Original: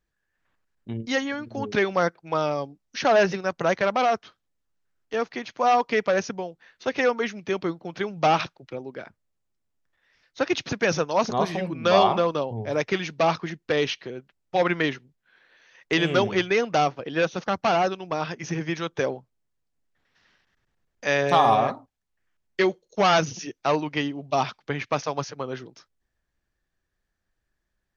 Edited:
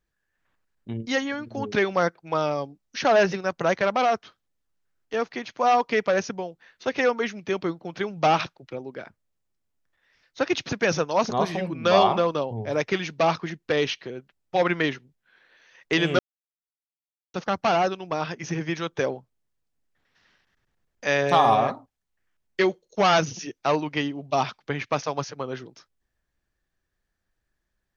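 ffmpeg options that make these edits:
ffmpeg -i in.wav -filter_complex "[0:a]asplit=3[link_01][link_02][link_03];[link_01]atrim=end=16.19,asetpts=PTS-STARTPTS,afade=type=out:start_time=16.186:duration=0.004:curve=hsin[link_04];[link_02]atrim=start=16.19:end=17.34,asetpts=PTS-STARTPTS,volume=0[link_05];[link_03]atrim=start=17.34,asetpts=PTS-STARTPTS,afade=type=in:duration=0.004:curve=hsin[link_06];[link_04][link_05][link_06]concat=n=3:v=0:a=1" out.wav

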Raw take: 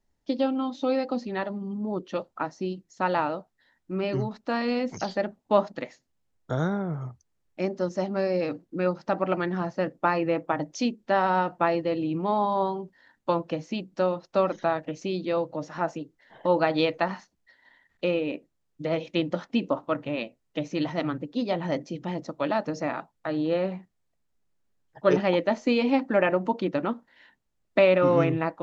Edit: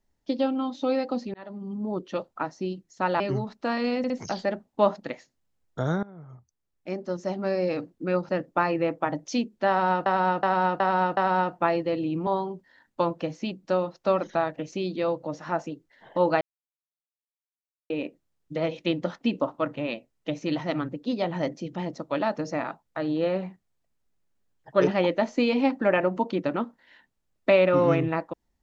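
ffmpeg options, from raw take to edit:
ffmpeg -i in.wav -filter_complex "[0:a]asplit=14[link_01][link_02][link_03][link_04][link_05][link_06][link_07][link_08][link_09][link_10][link_11][link_12][link_13][link_14];[link_01]atrim=end=1.34,asetpts=PTS-STARTPTS,afade=type=out:start_time=1.336:duration=0.004:curve=hsin[link_15];[link_02]atrim=start=1.34:end=3.202,asetpts=PTS-STARTPTS,afade=type=in:duration=0.54:curve=qsin[link_16];[link_03]atrim=start=4.038:end=4.882[link_17];[link_04]atrim=start=4.818:end=4.882[link_18];[link_05]atrim=start=4.818:end=6.75,asetpts=PTS-STARTPTS,afade=type=out:start_time=1.928:duration=0.004:curve=hsin:silence=0.105925[link_19];[link_06]atrim=start=6.75:end=9.012,asetpts=PTS-STARTPTS,afade=type=in:duration=1.57:silence=0.105925[link_20];[link_07]atrim=start=9.758:end=11.532[link_21];[link_08]atrim=start=11.158:end=11.532[link_22];[link_09]atrim=start=11.158:end=11.532[link_23];[link_10]atrim=start=11.158:end=11.532[link_24];[link_11]atrim=start=11.158:end=12.262[link_25];[link_12]atrim=start=12.558:end=16.7,asetpts=PTS-STARTPTS,afade=type=out:start_time=4.138:duration=0.004:curve=hsin[link_26];[link_13]atrim=start=16.7:end=18.19,asetpts=PTS-STARTPTS,volume=0[link_27];[link_14]atrim=start=18.19,asetpts=PTS-STARTPTS,afade=type=in:duration=0.004:curve=hsin[link_28];[link_15][link_16]concat=n=2:v=0:a=1[link_29];[link_29][link_17]acrossfade=duration=0.004:curve1=hsin:curve2=hsin[link_30];[link_30][link_18]acrossfade=duration=0.004:curve1=hsin:curve2=hsin[link_31];[link_19][link_20]concat=n=2:v=0:a=1[link_32];[link_31][link_32]acrossfade=duration=0.004:curve1=hsin:curve2=hsin[link_33];[link_33][link_21]acrossfade=duration=0.004:curve1=hsin:curve2=hsin[link_34];[link_34][link_22]acrossfade=duration=0.004:curve1=hsin:curve2=hsin[link_35];[link_35][link_23]acrossfade=duration=0.004:curve1=hsin:curve2=hsin[link_36];[link_36][link_24]acrossfade=duration=0.004:curve1=hsin:curve2=hsin[link_37];[link_37][link_25]acrossfade=duration=0.004:curve1=hsin:curve2=hsin[link_38];[link_26][link_27][link_28]concat=n=3:v=0:a=1[link_39];[link_38][link_39]acrossfade=duration=0.004:curve1=hsin:curve2=hsin" out.wav

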